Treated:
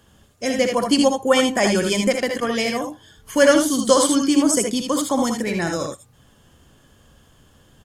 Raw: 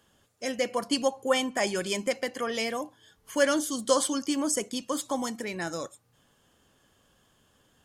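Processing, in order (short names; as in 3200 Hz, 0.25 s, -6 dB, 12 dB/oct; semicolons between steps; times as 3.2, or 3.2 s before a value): 2.4–2.84 expander -28 dBFS; low shelf 180 Hz +11 dB; early reflections 64 ms -8.5 dB, 78 ms -5.5 dB; gain +7 dB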